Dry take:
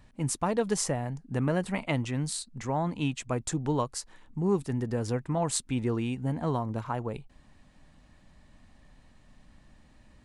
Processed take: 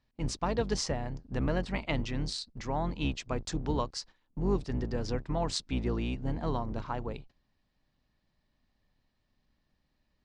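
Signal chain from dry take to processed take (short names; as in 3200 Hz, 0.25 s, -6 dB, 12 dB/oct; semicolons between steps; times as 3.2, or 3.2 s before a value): octaver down 2 oct, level +3 dB; gate -45 dBFS, range -15 dB; ladder low-pass 5800 Hz, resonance 45%; low shelf 170 Hz -4.5 dB; gain +6 dB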